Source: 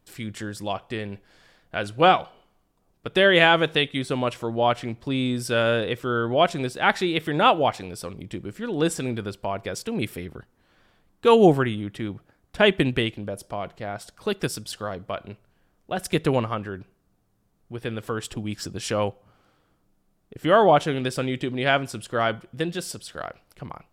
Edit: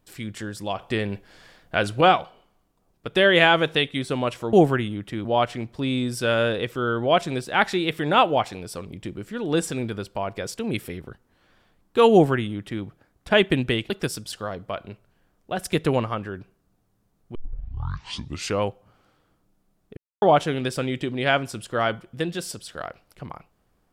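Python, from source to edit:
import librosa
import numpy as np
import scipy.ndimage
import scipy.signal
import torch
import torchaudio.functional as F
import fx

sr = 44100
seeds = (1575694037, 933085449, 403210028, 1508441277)

y = fx.edit(x, sr, fx.clip_gain(start_s=0.79, length_s=1.22, db=5.5),
    fx.duplicate(start_s=11.4, length_s=0.72, to_s=4.53),
    fx.cut(start_s=13.18, length_s=1.12),
    fx.tape_start(start_s=17.75, length_s=1.27),
    fx.silence(start_s=20.37, length_s=0.25), tone=tone)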